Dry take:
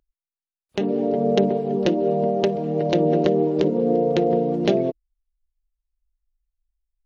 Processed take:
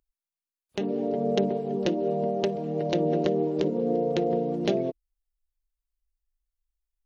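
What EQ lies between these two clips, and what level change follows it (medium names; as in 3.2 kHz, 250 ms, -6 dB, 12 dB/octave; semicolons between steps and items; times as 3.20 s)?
treble shelf 5.8 kHz +6 dB; -6.0 dB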